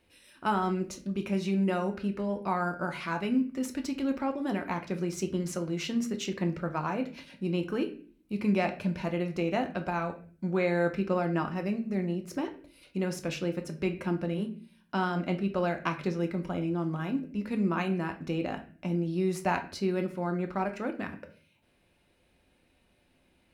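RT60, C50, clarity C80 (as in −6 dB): 0.40 s, 13.0 dB, 16.5 dB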